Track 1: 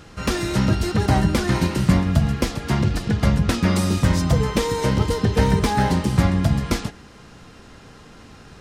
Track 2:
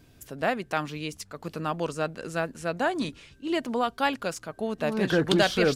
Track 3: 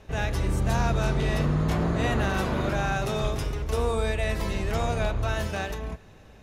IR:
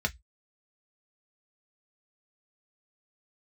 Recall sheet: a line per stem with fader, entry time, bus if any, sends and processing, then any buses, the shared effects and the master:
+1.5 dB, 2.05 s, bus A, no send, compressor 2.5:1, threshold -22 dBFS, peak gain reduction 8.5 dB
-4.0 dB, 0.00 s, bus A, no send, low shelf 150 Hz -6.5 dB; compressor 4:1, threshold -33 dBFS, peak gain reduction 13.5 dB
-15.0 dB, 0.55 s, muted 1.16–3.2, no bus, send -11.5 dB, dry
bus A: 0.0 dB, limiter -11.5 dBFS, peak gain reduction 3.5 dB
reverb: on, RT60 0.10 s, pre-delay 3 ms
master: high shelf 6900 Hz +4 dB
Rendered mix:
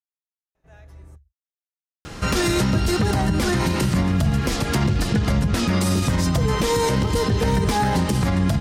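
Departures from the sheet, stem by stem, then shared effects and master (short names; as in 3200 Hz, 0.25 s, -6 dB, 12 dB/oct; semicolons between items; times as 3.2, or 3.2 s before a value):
stem 1 +1.5 dB -> +8.5 dB; stem 2: muted; stem 3 -15.0 dB -> -23.5 dB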